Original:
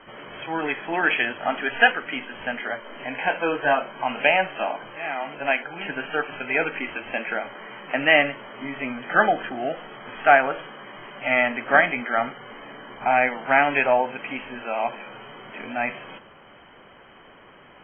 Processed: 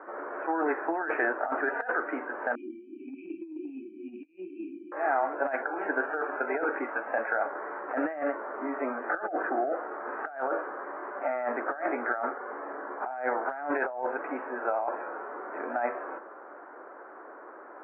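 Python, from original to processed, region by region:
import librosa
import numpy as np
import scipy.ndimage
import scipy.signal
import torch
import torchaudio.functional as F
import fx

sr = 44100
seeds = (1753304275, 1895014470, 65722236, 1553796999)

y = fx.chain(x, sr, fx.brickwall_bandstop(low_hz=380.0, high_hz=2300.0),
    fx.air_absorb(metres=190.0),
    fx.over_compress(threshold_db=-36.0, ratio=-0.5), at=(2.55, 4.92))
y = fx.chain(y, sr, fx.highpass(hz=48.0, slope=12),
    fx.peak_eq(hz=360.0, db=-13.0, octaves=0.28),
    fx.clip_hard(threshold_db=-15.5), at=(6.84, 7.46))
y = scipy.signal.sosfilt(scipy.signal.ellip(3, 1.0, 40, [310.0, 1500.0], 'bandpass', fs=sr, output='sos'), y)
y = fx.over_compress(y, sr, threshold_db=-30.0, ratio=-1.0)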